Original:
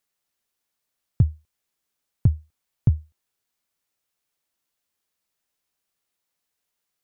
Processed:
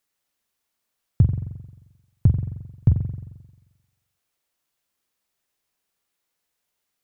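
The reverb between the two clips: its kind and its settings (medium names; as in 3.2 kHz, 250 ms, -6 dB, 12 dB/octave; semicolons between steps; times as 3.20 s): spring tank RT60 1.1 s, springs 44 ms, chirp 50 ms, DRR 4.5 dB; trim +1.5 dB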